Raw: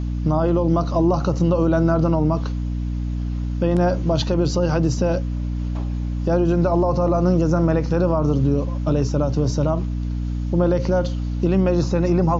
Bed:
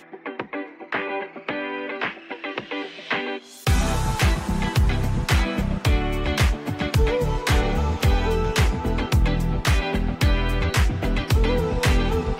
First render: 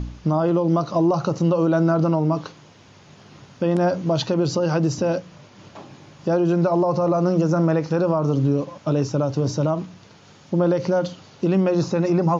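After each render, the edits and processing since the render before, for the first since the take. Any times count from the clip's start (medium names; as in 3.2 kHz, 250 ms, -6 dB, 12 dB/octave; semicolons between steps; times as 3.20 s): de-hum 60 Hz, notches 5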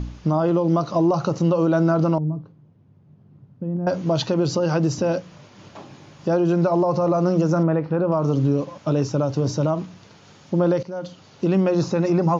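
2.18–3.87 s: band-pass filter 130 Hz, Q 1.4; 7.63–8.12 s: distance through air 430 m; 10.83–11.48 s: fade in, from -17 dB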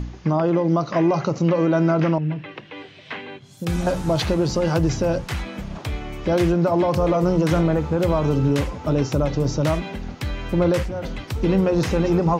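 add bed -8 dB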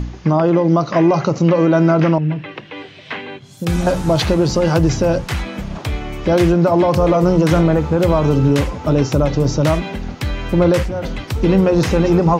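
trim +5.5 dB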